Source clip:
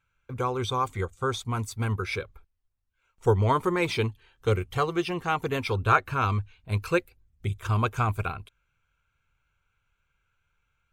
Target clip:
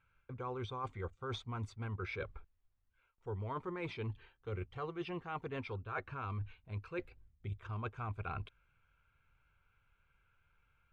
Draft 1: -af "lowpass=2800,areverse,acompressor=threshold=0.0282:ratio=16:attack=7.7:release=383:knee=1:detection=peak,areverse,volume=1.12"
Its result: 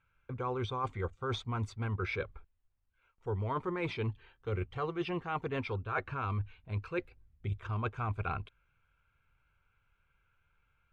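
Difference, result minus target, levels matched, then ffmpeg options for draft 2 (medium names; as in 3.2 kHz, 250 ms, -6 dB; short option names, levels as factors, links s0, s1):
compression: peak gain reduction -6 dB
-af "lowpass=2800,areverse,acompressor=threshold=0.0133:ratio=16:attack=7.7:release=383:knee=1:detection=peak,areverse,volume=1.12"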